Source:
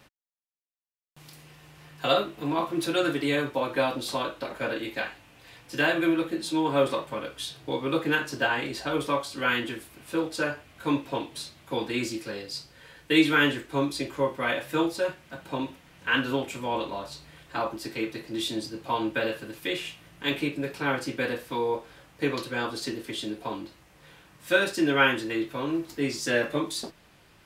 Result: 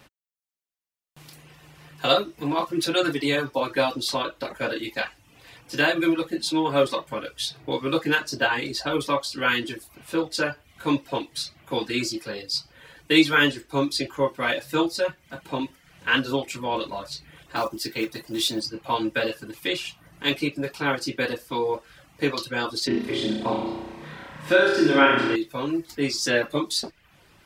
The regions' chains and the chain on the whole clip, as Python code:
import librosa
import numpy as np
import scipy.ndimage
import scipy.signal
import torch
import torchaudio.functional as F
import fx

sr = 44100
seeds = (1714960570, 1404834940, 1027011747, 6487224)

y = fx.chain(x, sr, fx.high_shelf(hz=11000.0, db=10.5),
    fx.quant_companded(bits=6), at=(17.56, 18.61))
y = fx.chain(y, sr, fx.lowpass(hz=1900.0, slope=6),
    fx.room_flutter(wall_m=5.6, rt60_s=1.2),
    fx.band_squash(depth_pct=40), at=(22.87, 25.36))
y = fx.dereverb_blind(y, sr, rt60_s=0.54)
y = fx.dynamic_eq(y, sr, hz=4900.0, q=1.6, threshold_db=-50.0, ratio=4.0, max_db=7)
y = F.gain(torch.from_numpy(y), 3.0).numpy()